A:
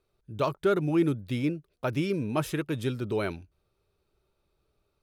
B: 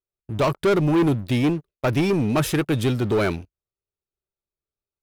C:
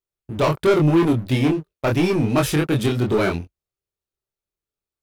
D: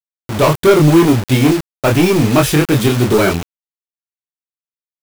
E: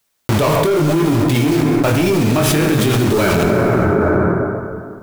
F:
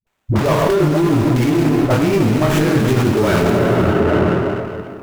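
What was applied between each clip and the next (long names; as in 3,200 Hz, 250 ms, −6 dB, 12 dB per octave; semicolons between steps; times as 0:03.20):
noise gate −48 dBFS, range −16 dB; leveller curve on the samples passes 3
chorus effect 2.9 Hz, depth 4 ms; level +5 dB
bit reduction 5 bits; level +7 dB
dense smooth reverb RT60 2.2 s, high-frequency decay 0.45×, DRR 5.5 dB; envelope flattener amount 100%; level −11.5 dB
all-pass dispersion highs, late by 68 ms, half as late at 350 Hz; windowed peak hold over 9 samples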